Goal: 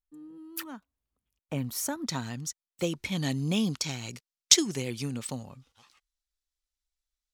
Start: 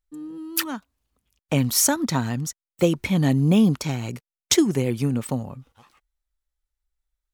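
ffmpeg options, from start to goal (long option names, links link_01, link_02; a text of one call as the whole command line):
ffmpeg -i in.wav -af "asetnsamples=nb_out_samples=441:pad=0,asendcmd='2.06 equalizer g 8.5;3.12 equalizer g 14.5',equalizer=frequency=5100:width=0.49:gain=-4,volume=-11dB" out.wav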